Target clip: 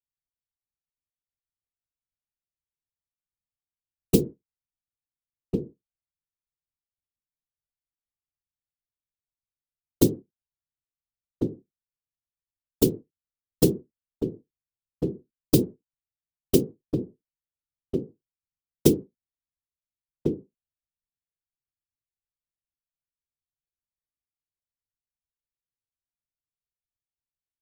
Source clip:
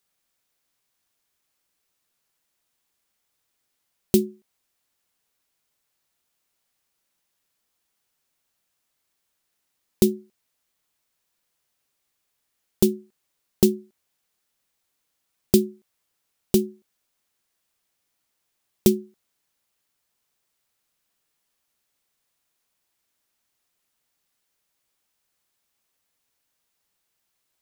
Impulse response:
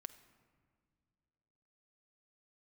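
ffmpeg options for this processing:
-filter_complex "[0:a]anlmdn=0.398,afftfilt=real='hypot(re,im)*cos(2*PI*random(0))':imag='hypot(re,im)*sin(2*PI*random(1))':win_size=512:overlap=0.75,asplit=2[a][b];[b]adelay=1399,volume=-7dB,highshelf=f=4k:g=-31.5[c];[a][c]amix=inputs=2:normalize=0,volume=4.5dB"

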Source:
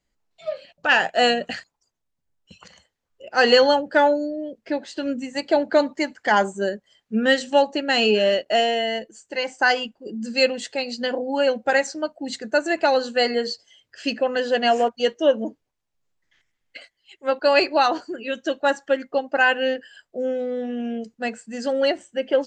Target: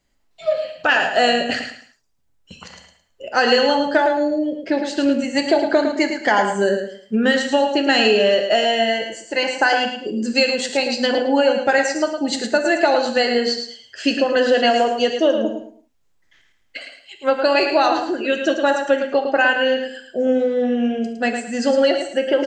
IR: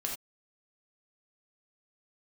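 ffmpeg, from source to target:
-filter_complex "[0:a]acompressor=threshold=-21dB:ratio=5,aecho=1:1:109|218|327:0.447|0.125|0.035,asplit=2[a][b];[1:a]atrim=start_sample=2205,atrim=end_sample=3528[c];[b][c]afir=irnorm=-1:irlink=0,volume=-2dB[d];[a][d]amix=inputs=2:normalize=0,volume=2.5dB"

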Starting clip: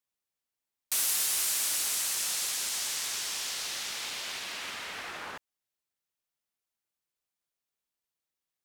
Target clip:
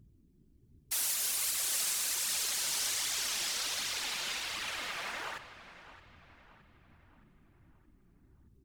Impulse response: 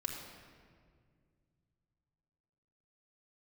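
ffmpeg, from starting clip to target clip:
-filter_complex "[0:a]acrossover=split=360|2400[a][b][c];[a]aeval=exprs='(mod(501*val(0)+1,2)-1)/501':c=same[d];[d][b][c]amix=inputs=3:normalize=0,aeval=exprs='val(0)+0.001*(sin(2*PI*60*n/s)+sin(2*PI*2*60*n/s)/2+sin(2*PI*3*60*n/s)/3+sin(2*PI*4*60*n/s)/4+sin(2*PI*5*60*n/s)/5)':c=same,asplit=2[e][f];[1:a]atrim=start_sample=2205[g];[f][g]afir=irnorm=-1:irlink=0,volume=-5.5dB[h];[e][h]amix=inputs=2:normalize=0,alimiter=limit=-18.5dB:level=0:latency=1:release=474,afftfilt=real='hypot(re,im)*cos(2*PI*random(0))':imag='hypot(re,im)*sin(2*PI*random(1))':win_size=512:overlap=0.75,flanger=delay=0.4:depth=5.7:regen=-21:speed=1.3:shape=triangular,asplit=2[i][j];[j]adelay=620,lowpass=f=3k:p=1,volume=-14dB,asplit=2[k][l];[l]adelay=620,lowpass=f=3k:p=1,volume=0.52,asplit=2[m][n];[n]adelay=620,lowpass=f=3k:p=1,volume=0.52,asplit=2[o][p];[p]adelay=620,lowpass=f=3k:p=1,volume=0.52,asplit=2[q][r];[r]adelay=620,lowpass=f=3k:p=1,volume=0.52[s];[i][k][m][o][q][s]amix=inputs=6:normalize=0,volume=6.5dB"

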